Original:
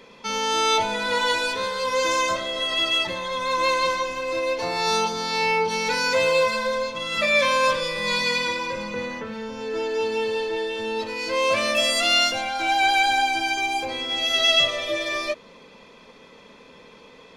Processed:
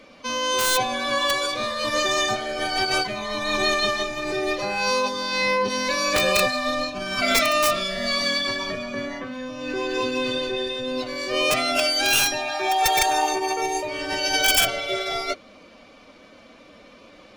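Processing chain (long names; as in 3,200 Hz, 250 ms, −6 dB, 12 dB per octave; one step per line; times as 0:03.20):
wrap-around overflow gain 11 dB
phase-vocoder pitch shift with formants kept +2.5 semitones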